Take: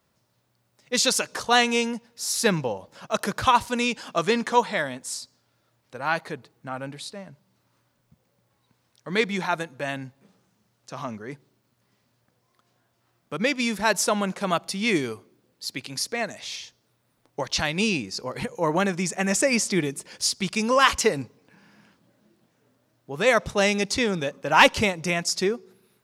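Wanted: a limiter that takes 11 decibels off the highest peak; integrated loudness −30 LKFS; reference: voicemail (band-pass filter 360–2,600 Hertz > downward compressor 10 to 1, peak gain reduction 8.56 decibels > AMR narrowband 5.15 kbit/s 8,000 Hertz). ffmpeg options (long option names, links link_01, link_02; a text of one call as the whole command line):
ffmpeg -i in.wav -af "alimiter=limit=-14dB:level=0:latency=1,highpass=360,lowpass=2600,acompressor=threshold=-27dB:ratio=10,volume=6dB" -ar 8000 -c:a libopencore_amrnb -b:a 5150 out.amr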